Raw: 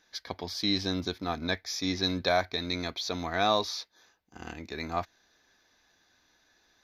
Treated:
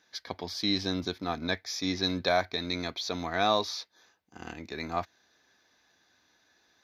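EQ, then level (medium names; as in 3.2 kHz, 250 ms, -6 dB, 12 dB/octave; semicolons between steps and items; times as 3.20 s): high-pass 82 Hz; treble shelf 9 kHz -3.5 dB; 0.0 dB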